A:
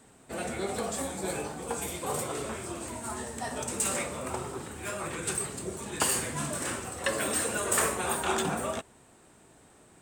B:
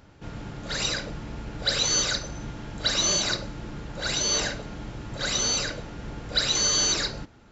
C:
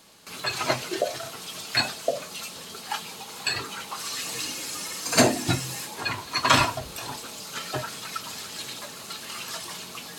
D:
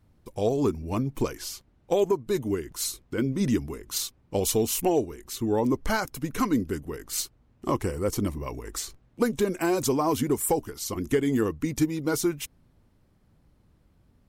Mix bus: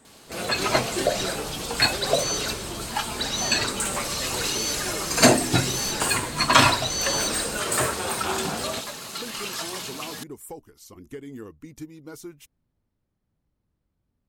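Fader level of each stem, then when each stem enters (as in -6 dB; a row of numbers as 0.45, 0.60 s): +1.0, -4.5, +3.0, -14.5 dB; 0.00, 0.35, 0.05, 0.00 s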